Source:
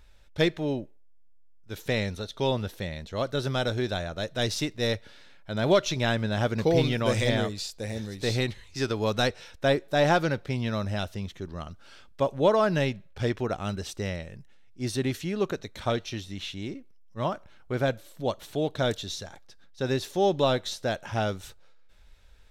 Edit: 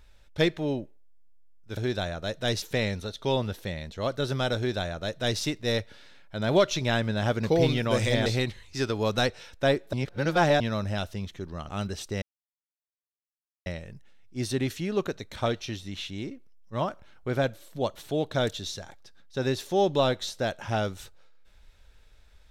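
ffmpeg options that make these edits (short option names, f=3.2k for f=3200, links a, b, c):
-filter_complex "[0:a]asplit=8[a][b][c][d][e][f][g][h];[a]atrim=end=1.772[i];[b]atrim=start=3.708:end=4.562[j];[c]atrim=start=1.768:end=7.412[k];[d]atrim=start=8.268:end=9.942[l];[e]atrim=start=9.938:end=10.612,asetpts=PTS-STARTPTS,areverse[m];[f]atrim=start=10.608:end=11.702[n];[g]atrim=start=13.568:end=14.1,asetpts=PTS-STARTPTS,afade=t=out:st=0.528:d=0.004:c=hsin,apad=pad_dur=1.44[o];[h]atrim=start=14.1,asetpts=PTS-STARTPTS,afade=t=in:d=0.004:c=hsin[p];[i][j]acrossfade=d=0.004:c1=hsin:c2=hsin[q];[q][k]acrossfade=d=0.004:c1=hsin:c2=hsin[r];[r][l]acrossfade=d=0.004:c1=hsin:c2=hsin[s];[s][m]acrossfade=d=0.004:c1=hsin:c2=hsin[t];[t][n]acrossfade=d=0.004:c1=hsin:c2=hsin[u];[o][p]concat=n=2:v=0:a=1[v];[u][v]acrossfade=d=0.004:c1=hsin:c2=hsin"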